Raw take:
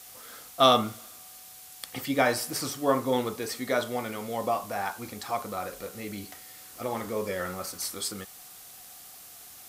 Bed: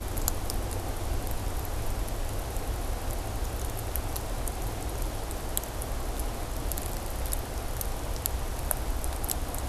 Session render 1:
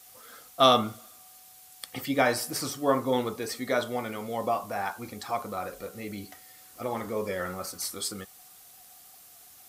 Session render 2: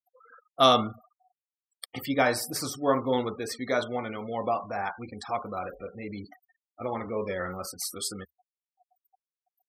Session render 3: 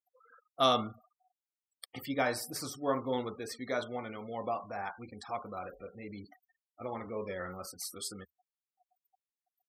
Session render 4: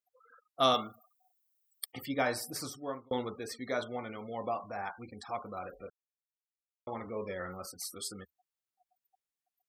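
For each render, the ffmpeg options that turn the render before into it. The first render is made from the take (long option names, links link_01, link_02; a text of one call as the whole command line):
ffmpeg -i in.wav -af "afftdn=noise_reduction=6:noise_floor=-48" out.wav
ffmpeg -i in.wav -af "afftfilt=real='re*gte(hypot(re,im),0.01)':imag='im*gte(hypot(re,im),0.01)':win_size=1024:overlap=0.75,equalizer=frequency=73:width=2.6:gain=5" out.wav
ffmpeg -i in.wav -af "volume=-7dB" out.wav
ffmpeg -i in.wav -filter_complex "[0:a]asettb=1/sr,asplit=3[link_01][link_02][link_03];[link_01]atrim=end=0.744[link_04];[link_02]atrim=start=0.74:end=1.92,asetpts=PTS-STARTPTS,afade=type=in:duration=0.004:curve=qsin,afade=type=out:start_time=1.176:duration=0.004:curve=qsin,aemphasis=mode=production:type=bsi[link_05];[link_03]atrim=start=1.916[link_06];[link_04][link_05]acrossfade=duration=0.004:curve1=hsin:curve2=qsin[link_07];[link_07][link_06]acrossfade=duration=0.004:curve1=qsin:curve2=hsin,asplit=4[link_08][link_09][link_10][link_11];[link_08]atrim=end=3.11,asetpts=PTS-STARTPTS,afade=type=out:start_time=2.63:duration=0.48[link_12];[link_09]atrim=start=3.11:end=5.9,asetpts=PTS-STARTPTS,afade=type=in:duration=0.004:curve=hsin,afade=type=out:start_time=2.786:duration=0.004:curve=hsin[link_13];[link_10]atrim=start=5.9:end=6.87,asetpts=PTS-STARTPTS,volume=0[link_14];[link_11]atrim=start=6.87,asetpts=PTS-STARTPTS,afade=type=in:duration=0.004:curve=hsin[link_15];[link_12][link_13][link_14][link_15]concat=n=4:v=0:a=1" out.wav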